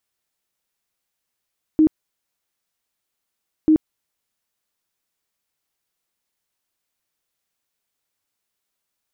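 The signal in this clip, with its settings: tone bursts 312 Hz, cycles 25, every 1.89 s, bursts 2, -10 dBFS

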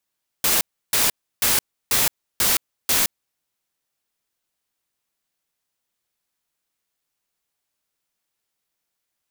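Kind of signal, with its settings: noise bursts white, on 0.17 s, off 0.32 s, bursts 6, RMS -18.5 dBFS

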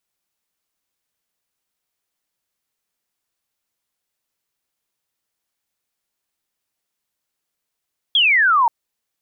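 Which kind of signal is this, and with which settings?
laser zap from 3400 Hz, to 890 Hz, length 0.53 s sine, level -11.5 dB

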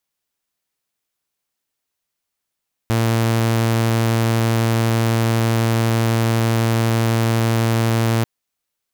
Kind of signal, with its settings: tone saw 114 Hz -12.5 dBFS 5.34 s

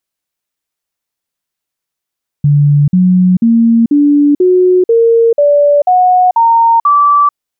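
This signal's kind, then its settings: stepped sine 145 Hz up, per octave 3, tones 10, 0.44 s, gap 0.05 s -4.5 dBFS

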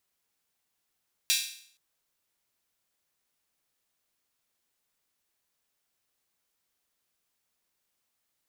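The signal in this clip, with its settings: open hi-hat length 0.47 s, high-pass 3100 Hz, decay 0.58 s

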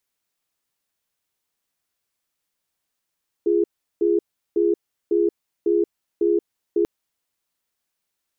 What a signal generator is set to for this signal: cadence 344 Hz, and 413 Hz, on 0.18 s, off 0.37 s, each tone -18.5 dBFS 3.39 s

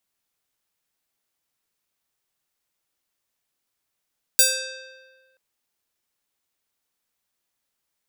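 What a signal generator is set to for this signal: plucked string C5, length 0.98 s, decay 1.54 s, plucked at 0.5, bright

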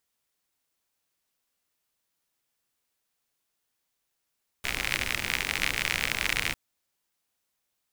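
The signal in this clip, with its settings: rain from filtered ticks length 1.90 s, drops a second 61, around 2200 Hz, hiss -7 dB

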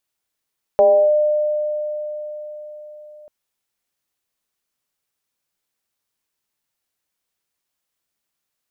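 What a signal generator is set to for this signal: FM tone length 2.49 s, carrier 602 Hz, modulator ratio 0.32, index 0.62, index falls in 0.33 s linear, decay 4.64 s, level -8 dB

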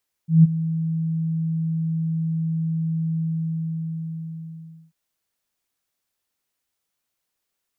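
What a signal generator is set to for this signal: ADSR sine 162 Hz, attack 0.157 s, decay 23 ms, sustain -14.5 dB, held 2.91 s, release 1.73 s -6.5 dBFS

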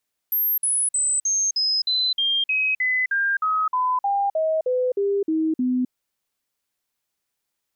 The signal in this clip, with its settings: stepped sine 12800 Hz down, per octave 3, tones 18, 0.26 s, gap 0.05 s -18.5 dBFS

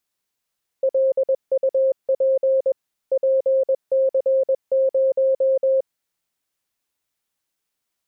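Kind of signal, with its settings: Morse "LUP PC0" 21 wpm 532 Hz -14.5 dBFS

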